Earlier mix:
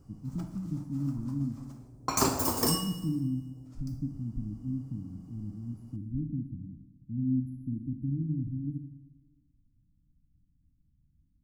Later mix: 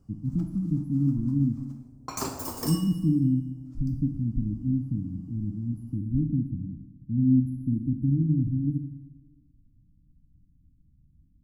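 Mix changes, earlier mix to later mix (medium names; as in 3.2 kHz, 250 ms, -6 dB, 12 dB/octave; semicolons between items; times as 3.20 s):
speech +8.0 dB; background -6.0 dB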